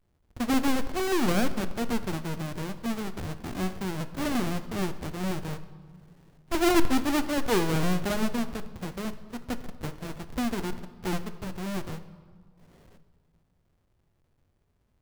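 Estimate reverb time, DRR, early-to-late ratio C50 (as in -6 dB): 1.8 s, 10.0 dB, 12.5 dB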